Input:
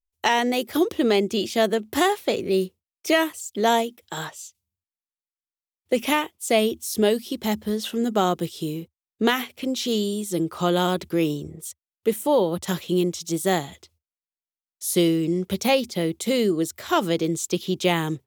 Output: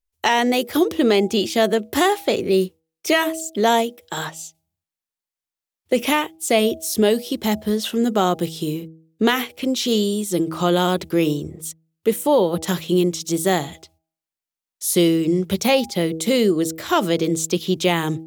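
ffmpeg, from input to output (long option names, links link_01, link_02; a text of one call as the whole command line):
ffmpeg -i in.wav -filter_complex "[0:a]bandreject=frequency=161:width_type=h:width=4,bandreject=frequency=322:width_type=h:width=4,bandreject=frequency=483:width_type=h:width=4,bandreject=frequency=644:width_type=h:width=4,bandreject=frequency=805:width_type=h:width=4,asplit=2[link_01][link_02];[link_02]alimiter=limit=-14.5dB:level=0:latency=1,volume=-3dB[link_03];[link_01][link_03]amix=inputs=2:normalize=0" out.wav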